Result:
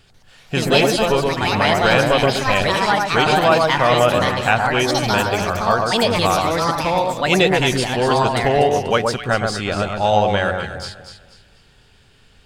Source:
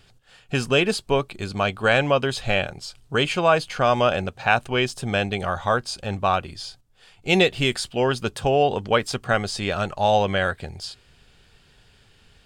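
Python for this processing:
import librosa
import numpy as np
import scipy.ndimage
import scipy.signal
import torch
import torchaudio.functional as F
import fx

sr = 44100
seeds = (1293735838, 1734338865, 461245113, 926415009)

y = fx.echo_alternate(x, sr, ms=122, hz=1500.0, feedback_pct=55, wet_db=-3)
y = fx.echo_pitch(y, sr, ms=142, semitones=4, count=2, db_per_echo=-3.0)
y = y * 10.0 ** (2.0 / 20.0)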